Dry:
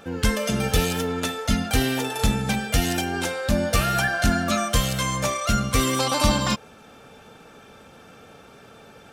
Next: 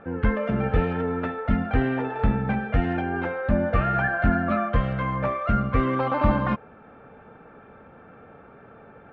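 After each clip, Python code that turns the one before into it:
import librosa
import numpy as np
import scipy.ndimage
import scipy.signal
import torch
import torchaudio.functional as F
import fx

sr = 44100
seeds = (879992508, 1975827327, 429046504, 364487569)

y = scipy.signal.sosfilt(scipy.signal.butter(4, 1900.0, 'lowpass', fs=sr, output='sos'), x)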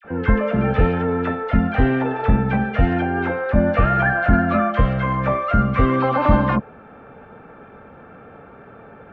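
y = fx.dispersion(x, sr, late='lows', ms=48.0, hz=1300.0)
y = F.gain(torch.from_numpy(y), 5.5).numpy()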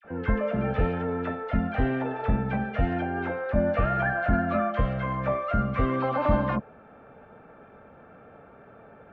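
y = fx.peak_eq(x, sr, hz=630.0, db=5.5, octaves=0.3)
y = F.gain(torch.from_numpy(y), -8.5).numpy()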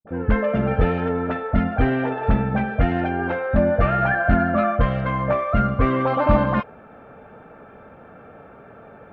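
y = fx.dispersion(x, sr, late='highs', ms=76.0, hz=1100.0)
y = F.gain(torch.from_numpy(y), 6.0).numpy()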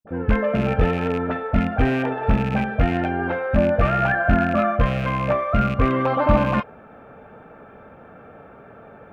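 y = fx.rattle_buzz(x, sr, strikes_db=-24.0, level_db=-23.0)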